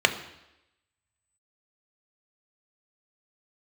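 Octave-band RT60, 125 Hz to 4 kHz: 0.80, 0.90, 0.90, 0.90, 0.90, 0.90 seconds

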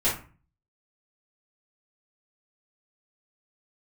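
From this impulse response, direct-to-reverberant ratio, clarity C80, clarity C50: −10.0 dB, 12.5 dB, 6.0 dB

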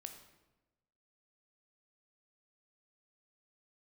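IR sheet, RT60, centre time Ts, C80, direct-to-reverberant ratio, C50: 1.1 s, 19 ms, 10.0 dB, 5.5 dB, 8.0 dB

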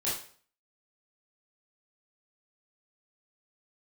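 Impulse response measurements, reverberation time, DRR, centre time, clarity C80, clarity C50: 0.50 s, −8.5 dB, 44 ms, 9.0 dB, 3.5 dB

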